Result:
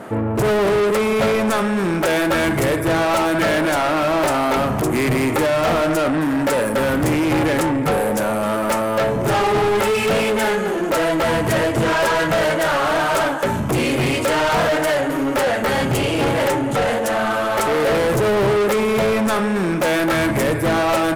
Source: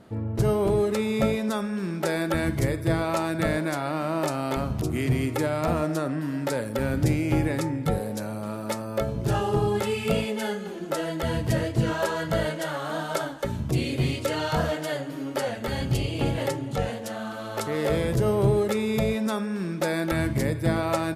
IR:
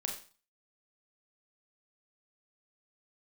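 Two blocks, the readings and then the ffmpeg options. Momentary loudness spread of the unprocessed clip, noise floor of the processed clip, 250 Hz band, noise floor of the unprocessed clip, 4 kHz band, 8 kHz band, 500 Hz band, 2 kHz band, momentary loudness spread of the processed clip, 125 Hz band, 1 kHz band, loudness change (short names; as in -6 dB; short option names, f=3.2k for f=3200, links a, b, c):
7 LU, -21 dBFS, +7.0 dB, -34 dBFS, +10.0 dB, +9.5 dB, +9.5 dB, +12.0 dB, 2 LU, +2.0 dB, +12.0 dB, +8.5 dB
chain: -filter_complex "[0:a]equalizer=f=4.2k:t=o:w=1.2:g=-13.5,asplit=2[a][b];[b]highpass=f=720:p=1,volume=30dB,asoftclip=type=tanh:threshold=-10.5dB[c];[a][c]amix=inputs=2:normalize=0,lowpass=f=7.1k:p=1,volume=-6dB"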